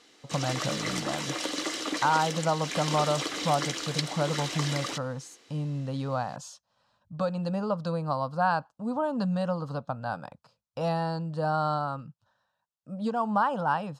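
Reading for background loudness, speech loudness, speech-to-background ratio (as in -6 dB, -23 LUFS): -32.5 LUFS, -30.5 LUFS, 2.0 dB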